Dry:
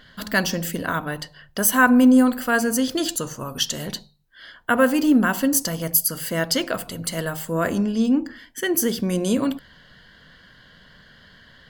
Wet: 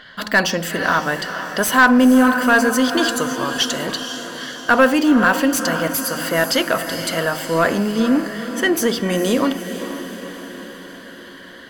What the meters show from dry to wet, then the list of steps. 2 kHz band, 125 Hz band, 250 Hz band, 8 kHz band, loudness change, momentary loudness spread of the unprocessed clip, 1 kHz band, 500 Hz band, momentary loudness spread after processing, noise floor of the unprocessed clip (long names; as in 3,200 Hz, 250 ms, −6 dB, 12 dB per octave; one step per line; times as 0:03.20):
+7.0 dB, +0.5 dB, +2.5 dB, 0.0 dB, +3.5 dB, 13 LU, +7.0 dB, +6.0 dB, 16 LU, −52 dBFS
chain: feedback delay with all-pass diffusion 475 ms, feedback 58%, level −11 dB
mid-hump overdrive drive 17 dB, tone 2,500 Hz, clips at −2 dBFS